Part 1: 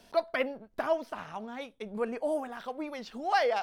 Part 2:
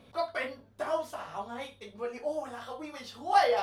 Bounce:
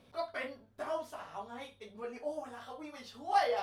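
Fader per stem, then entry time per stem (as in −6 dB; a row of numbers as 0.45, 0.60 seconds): −16.0, −6.0 decibels; 0.00, 0.00 seconds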